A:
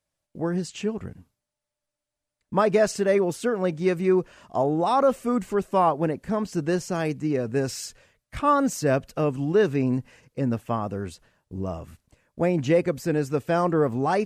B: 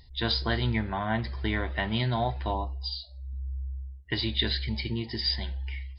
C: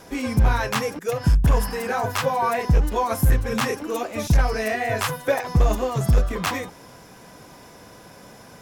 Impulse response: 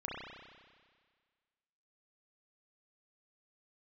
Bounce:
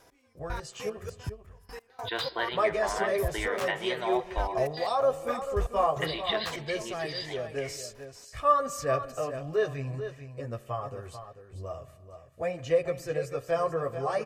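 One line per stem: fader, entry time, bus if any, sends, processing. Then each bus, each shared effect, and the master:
-5.0 dB, 0.00 s, send -16 dB, echo send -9.5 dB, chorus voices 2, 0.44 Hz, delay 11 ms, depth 3.7 ms; comb 1.7 ms, depth 58%
-0.5 dB, 1.90 s, send -17.5 dB, no echo send, Chebyshev band-pass 390–2900 Hz, order 2
-12.5 dB, 0.00 s, no send, no echo send, step gate "x....x..x.x." 151 bpm -24 dB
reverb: on, RT60 1.7 s, pre-delay 31 ms
echo: echo 0.441 s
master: bell 200 Hz -11.5 dB 0.85 oct

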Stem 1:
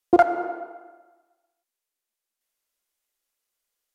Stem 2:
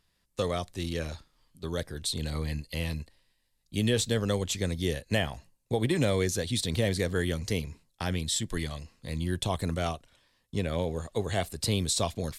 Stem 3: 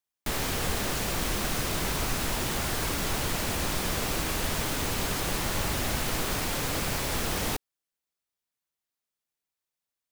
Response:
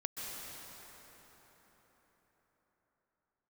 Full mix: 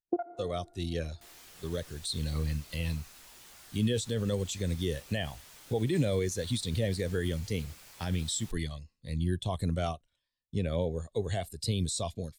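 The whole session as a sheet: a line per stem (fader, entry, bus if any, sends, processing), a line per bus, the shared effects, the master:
-2.5 dB, 0.00 s, no bus, send -19.5 dB, compressor 8:1, threshold -24 dBFS, peak gain reduction 13 dB; low shelf 460 Hz +3.5 dB; auto duck -19 dB, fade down 0.50 s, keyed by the second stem
-9.5 dB, 0.00 s, bus A, no send, AGC gain up to 9 dB
-13.5 dB, 0.95 s, bus A, no send, low shelf 440 Hz -10 dB
bus A: 0.0 dB, high shelf 2800 Hz +7.5 dB; limiter -20 dBFS, peak gain reduction 9 dB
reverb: on, RT60 4.8 s, pre-delay 0.118 s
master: spectral expander 1.5:1

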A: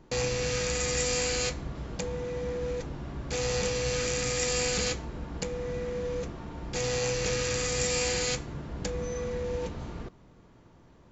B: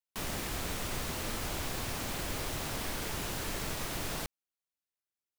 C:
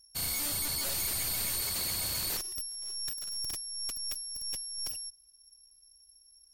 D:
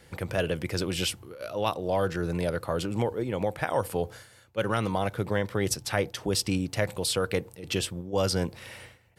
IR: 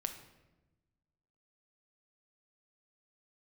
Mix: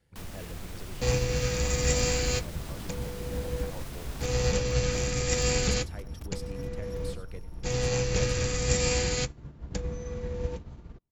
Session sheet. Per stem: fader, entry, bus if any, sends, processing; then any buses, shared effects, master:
+2.0 dB, 0.90 s, no send, no echo send, upward expander 2.5:1, over -52 dBFS
-5.5 dB, 0.00 s, no send, no echo send, limiter -30.5 dBFS, peak gain reduction 7 dB
-12.5 dB, 2.10 s, no send, no echo send, spectral gate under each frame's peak -15 dB weak; tilt -3.5 dB/oct; fast leveller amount 100%
-19.0 dB, 0.00 s, no send, echo send -14.5 dB, half-wave gain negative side -3 dB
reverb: off
echo: echo 97 ms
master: low shelf 200 Hz +10 dB

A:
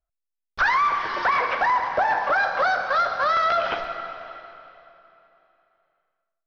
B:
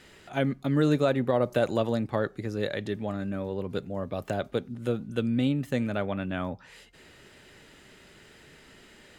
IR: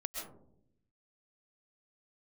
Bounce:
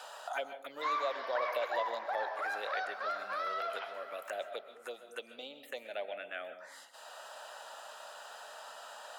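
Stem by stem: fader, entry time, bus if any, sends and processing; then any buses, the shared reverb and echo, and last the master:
-4.0 dB, 0.10 s, no send, attack slew limiter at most 320 dB/s; auto duck -11 dB, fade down 1.30 s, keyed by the second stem
-6.5 dB, 0.00 s, send -5 dB, envelope phaser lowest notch 340 Hz, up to 1800 Hz, full sweep at -22.5 dBFS; three-band squash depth 70%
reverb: on, RT60 0.70 s, pre-delay 90 ms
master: Chebyshev high-pass 630 Hz, order 3

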